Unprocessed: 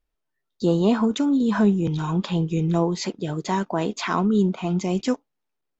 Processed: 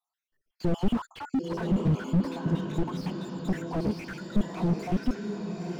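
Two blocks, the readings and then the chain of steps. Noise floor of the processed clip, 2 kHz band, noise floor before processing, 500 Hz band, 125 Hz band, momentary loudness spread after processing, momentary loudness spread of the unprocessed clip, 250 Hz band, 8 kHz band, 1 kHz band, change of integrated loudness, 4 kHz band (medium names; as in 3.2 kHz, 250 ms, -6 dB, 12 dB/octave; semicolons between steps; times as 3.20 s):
under -85 dBFS, -8.0 dB, -79 dBFS, -9.0 dB, -4.5 dB, 8 LU, 7 LU, -7.0 dB, no reading, -9.5 dB, -7.0 dB, -10.0 dB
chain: random holes in the spectrogram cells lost 69%; echo that smears into a reverb 939 ms, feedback 51%, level -11 dB; slew-rate limiter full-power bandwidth 13 Hz; trim +3.5 dB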